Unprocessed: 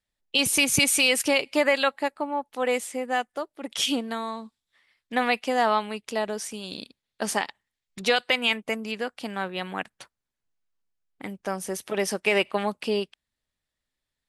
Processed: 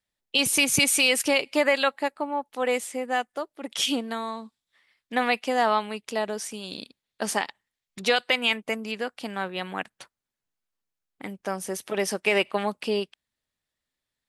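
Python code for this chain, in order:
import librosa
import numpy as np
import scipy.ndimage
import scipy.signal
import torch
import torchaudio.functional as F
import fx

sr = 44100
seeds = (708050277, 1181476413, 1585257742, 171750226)

y = fx.low_shelf(x, sr, hz=64.0, db=-9.0)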